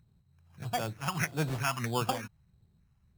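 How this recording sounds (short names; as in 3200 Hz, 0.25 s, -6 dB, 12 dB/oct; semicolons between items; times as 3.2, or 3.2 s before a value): phasing stages 4, 1.6 Hz, lowest notch 430–2600 Hz; aliases and images of a low sample rate 4000 Hz, jitter 0%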